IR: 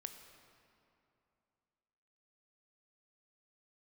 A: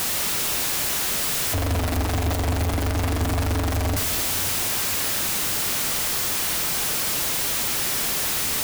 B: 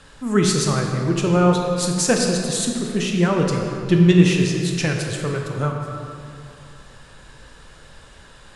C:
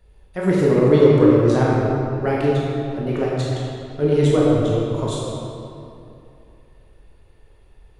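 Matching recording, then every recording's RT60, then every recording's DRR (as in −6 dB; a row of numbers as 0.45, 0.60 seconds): A; 2.7, 2.8, 2.8 seconds; 6.5, 1.0, −6.0 decibels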